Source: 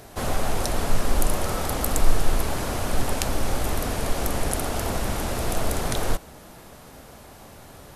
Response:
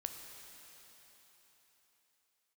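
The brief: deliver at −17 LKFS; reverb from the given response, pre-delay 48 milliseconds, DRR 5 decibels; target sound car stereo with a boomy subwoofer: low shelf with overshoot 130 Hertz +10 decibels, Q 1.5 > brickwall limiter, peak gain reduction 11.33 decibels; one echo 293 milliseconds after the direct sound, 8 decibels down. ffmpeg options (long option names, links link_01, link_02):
-filter_complex "[0:a]aecho=1:1:293:0.398,asplit=2[link_01][link_02];[1:a]atrim=start_sample=2205,adelay=48[link_03];[link_02][link_03]afir=irnorm=-1:irlink=0,volume=-3.5dB[link_04];[link_01][link_04]amix=inputs=2:normalize=0,lowshelf=frequency=130:width_type=q:width=1.5:gain=10,volume=4.5dB,alimiter=limit=-0.5dB:level=0:latency=1"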